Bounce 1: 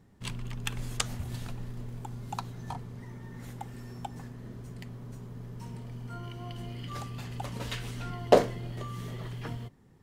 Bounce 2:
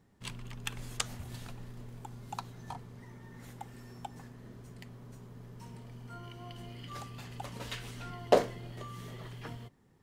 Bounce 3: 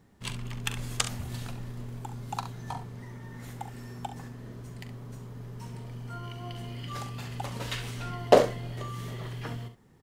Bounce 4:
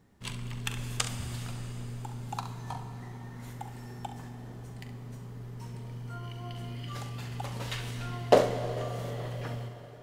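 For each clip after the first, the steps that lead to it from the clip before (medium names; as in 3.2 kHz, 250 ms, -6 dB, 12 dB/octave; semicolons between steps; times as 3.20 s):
bass shelf 280 Hz -5 dB; trim -3 dB
early reflections 42 ms -12.5 dB, 68 ms -11.5 dB; trim +5.5 dB
plate-style reverb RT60 4.5 s, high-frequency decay 0.85×, DRR 8 dB; trim -2.5 dB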